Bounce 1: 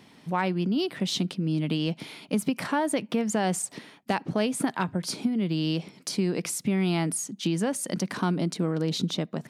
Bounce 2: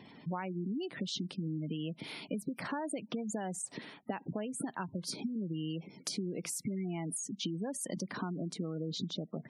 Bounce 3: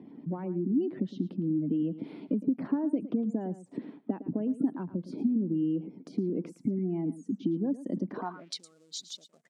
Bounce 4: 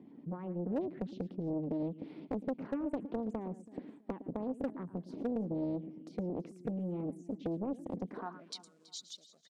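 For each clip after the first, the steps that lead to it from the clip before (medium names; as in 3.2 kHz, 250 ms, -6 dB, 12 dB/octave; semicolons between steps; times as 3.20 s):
compression 5:1, threshold -35 dBFS, peak gain reduction 13.5 dB; spectral gate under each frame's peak -20 dB strong
delay 111 ms -15 dB; waveshaping leveller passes 1; band-pass sweep 280 Hz -> 7.8 kHz, 8.10–8.64 s; trim +8.5 dB
hard clipper -21 dBFS, distortion -22 dB; feedback delay 327 ms, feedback 29%, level -18.5 dB; loudspeaker Doppler distortion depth 0.96 ms; trim -6 dB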